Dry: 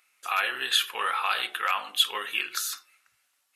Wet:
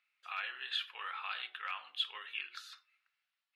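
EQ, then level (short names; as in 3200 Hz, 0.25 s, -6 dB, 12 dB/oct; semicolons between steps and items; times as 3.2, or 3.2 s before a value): band-pass 6100 Hz, Q 0.91; air absorption 420 m; +1.0 dB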